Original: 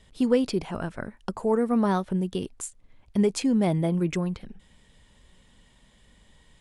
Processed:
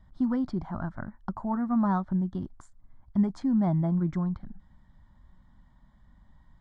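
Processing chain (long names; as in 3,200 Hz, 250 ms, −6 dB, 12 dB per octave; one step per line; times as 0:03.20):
head-to-tape spacing loss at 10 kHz 35 dB
phaser with its sweep stopped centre 1,100 Hz, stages 4
level +2.5 dB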